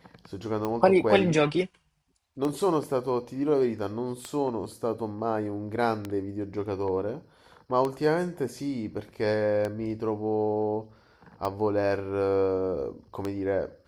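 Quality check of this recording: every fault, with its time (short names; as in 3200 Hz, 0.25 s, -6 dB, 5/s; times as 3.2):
tick 33 1/3 rpm -17 dBFS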